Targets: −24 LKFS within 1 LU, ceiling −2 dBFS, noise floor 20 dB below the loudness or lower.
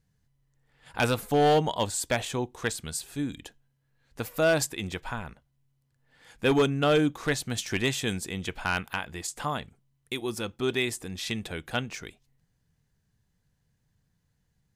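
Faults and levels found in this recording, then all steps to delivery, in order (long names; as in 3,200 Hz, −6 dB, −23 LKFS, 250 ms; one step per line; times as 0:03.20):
share of clipped samples 0.6%; peaks flattened at −16.5 dBFS; integrated loudness −28.5 LKFS; sample peak −16.5 dBFS; target loudness −24.0 LKFS
→ clipped peaks rebuilt −16.5 dBFS
level +4.5 dB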